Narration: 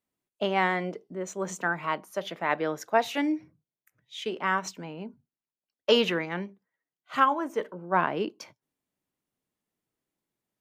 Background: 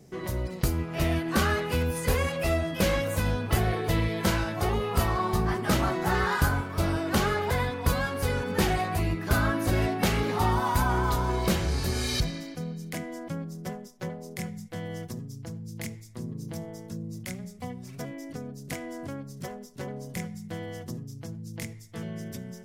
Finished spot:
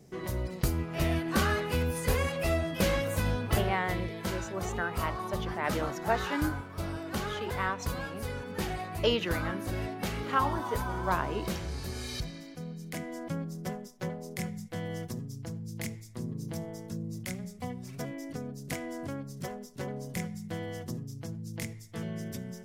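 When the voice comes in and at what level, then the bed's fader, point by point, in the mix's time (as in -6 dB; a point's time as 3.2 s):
3.15 s, -5.5 dB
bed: 3.53 s -2.5 dB
3.79 s -9 dB
12.24 s -9 dB
13.27 s -0.5 dB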